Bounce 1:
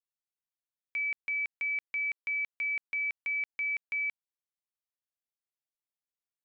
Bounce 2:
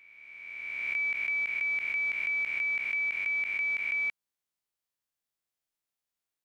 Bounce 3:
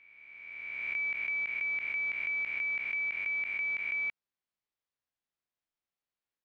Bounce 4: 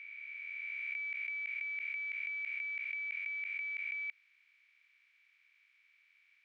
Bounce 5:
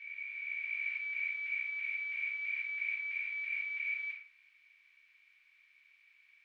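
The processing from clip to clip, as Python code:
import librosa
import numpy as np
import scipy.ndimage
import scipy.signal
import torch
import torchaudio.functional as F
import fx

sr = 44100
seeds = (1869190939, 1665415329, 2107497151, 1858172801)

y1 = fx.spec_swells(x, sr, rise_s=2.15)
y1 = F.gain(torch.from_numpy(y1), 1.5).numpy()
y2 = fx.air_absorb(y1, sr, metres=150.0)
y2 = F.gain(torch.from_numpy(y2), -1.0).numpy()
y3 = fx.bin_compress(y2, sr, power=0.4)
y3 = fx.ladder_highpass(y3, sr, hz=1400.0, resonance_pct=20)
y3 = F.gain(torch.from_numpy(y3), -3.5).numpy()
y4 = fx.room_shoebox(y3, sr, seeds[0], volume_m3=640.0, walls='furnished', distance_m=8.8)
y4 = F.gain(torch.from_numpy(y4), -7.5).numpy()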